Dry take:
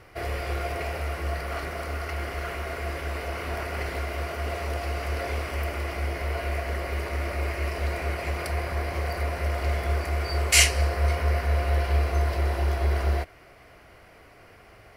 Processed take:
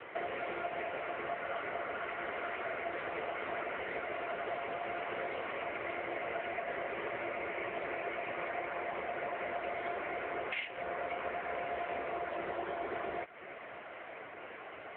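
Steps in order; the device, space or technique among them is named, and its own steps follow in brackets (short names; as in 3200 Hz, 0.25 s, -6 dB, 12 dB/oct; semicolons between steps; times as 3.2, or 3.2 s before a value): voicemail (BPF 310–3000 Hz; compressor 8:1, threshold -42 dBFS, peak gain reduction 23.5 dB; gain +9 dB; AMR-NB 6.7 kbps 8000 Hz)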